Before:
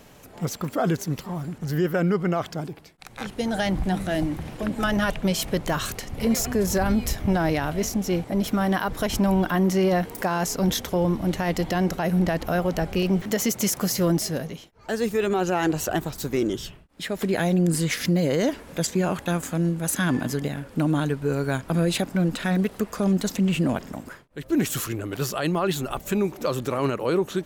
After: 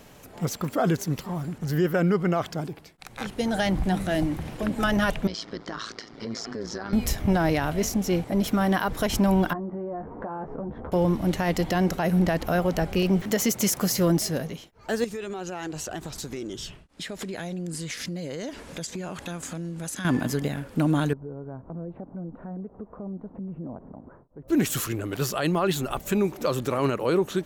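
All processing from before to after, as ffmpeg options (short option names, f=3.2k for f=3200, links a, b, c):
-filter_complex "[0:a]asettb=1/sr,asplit=3[a][b][c];[a]atrim=end=5.274[d];[b]atrim=start=5.27:end=6.93,asetpts=PTS-STARTPTS,afade=t=in:d=0.004:c=qsin,afade=t=out:st=1.656:d=0.004:c=qsin,highpass=240,equalizer=f=320:t=q:w=4:g=4,equalizer=f=560:t=q:w=4:g=-7,equalizer=f=810:t=q:w=4:g=-5,equalizer=f=1.3k:t=q:w=4:g=3,equalizer=f=2.6k:t=q:w=4:g=-9,equalizer=f=5k:t=q:w=4:g=7,lowpass=f=5.3k:w=0.5412,lowpass=f=5.3k:w=1.3066,acompressor=threshold=-27dB:ratio=3:attack=3.2:release=140:knee=1:detection=peak,tremolo=f=110:d=0.824[e];[c]atrim=start=6.926[f];[d][e]acrossfade=d=0.004:c1=hsin:c2=qsin[g];[g][f]acrossfade=d=0.004:c1=qsin:c2=hsin,asettb=1/sr,asplit=3[h][i][j];[h]atrim=end=9.534[k];[i]atrim=start=9.53:end=10.92,asetpts=PTS-STARTPTS,afade=t=in:d=0.004:c=qsin,afade=t=out:st=1.386:d=0.004:c=qsin,lowpass=f=1.2k:w=0.5412,lowpass=f=1.2k:w=1.3066,asplit=2[l][m];[m]adelay=14,volume=-5.5dB[n];[l][n]amix=inputs=2:normalize=0,atrim=end_sample=61299,acompressor=threshold=-30dB:ratio=6:attack=3.2:release=140:knee=1:detection=peak[o];[j]atrim=start=10.916[p];[k][o]acrossfade=d=0.004:c1=hsin:c2=qsin[q];[q][p]acrossfade=d=0.004:c1=qsin:c2=hsin,asettb=1/sr,asplit=3[r][s][t];[r]atrim=end=15.044[u];[s]atrim=start=15.04:end=20.05,asetpts=PTS-STARTPTS,afade=t=in:d=0.004:c=qsin,afade=t=out:st=5.006:d=0.004:c=qsin,lowpass=7.1k,highshelf=f=5.1k:g=11,acompressor=threshold=-32dB:ratio=4:attack=3.2:release=140:knee=1:detection=peak[v];[t]atrim=start=20.046[w];[u][v]acrossfade=d=0.004:c1=hsin:c2=qsin[x];[x][w]acrossfade=d=0.004:c1=qsin:c2=hsin,asettb=1/sr,asplit=3[y][z][aa];[y]atrim=end=21.134[ab];[z]atrim=start=21.13:end=24.48,asetpts=PTS-STARTPTS,afade=t=in:d=0.004:c=qsin,afade=t=out:st=3.346:d=0.004:c=qsin,lowpass=f=1k:w=0.5412,lowpass=f=1k:w=1.3066,acompressor=threshold=-44dB:ratio=2:attack=3.2:release=140:knee=1:detection=peak[ac];[aa]atrim=start=24.476[ad];[ab][ac]acrossfade=d=0.004:c1=hsin:c2=qsin[ae];[ae][ad]acrossfade=d=0.004:c1=qsin:c2=hsin"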